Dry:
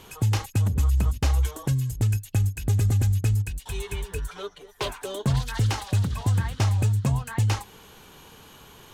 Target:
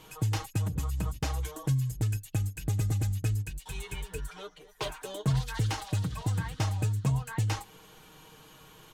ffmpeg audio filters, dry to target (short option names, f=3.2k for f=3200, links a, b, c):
-af "aecho=1:1:6.4:0.59,volume=-6dB"